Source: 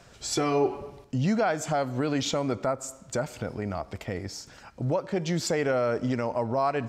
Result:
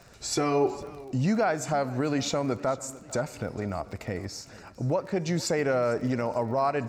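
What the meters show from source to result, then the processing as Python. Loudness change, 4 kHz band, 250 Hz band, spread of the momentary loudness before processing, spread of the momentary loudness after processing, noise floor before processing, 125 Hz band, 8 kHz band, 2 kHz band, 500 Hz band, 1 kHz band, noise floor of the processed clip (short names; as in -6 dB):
0.0 dB, -1.5 dB, 0.0 dB, 10 LU, 10 LU, -52 dBFS, 0.0 dB, 0.0 dB, 0.0 dB, 0.0 dB, 0.0 dB, -50 dBFS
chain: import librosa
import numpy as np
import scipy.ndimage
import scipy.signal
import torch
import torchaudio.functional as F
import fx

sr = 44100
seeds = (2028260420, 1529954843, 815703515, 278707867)

y = fx.notch(x, sr, hz=3200.0, q=5.5)
y = fx.dmg_crackle(y, sr, seeds[0], per_s=23.0, level_db=-39.0)
y = fx.echo_warbled(y, sr, ms=450, feedback_pct=51, rate_hz=2.8, cents=86, wet_db=-20.0)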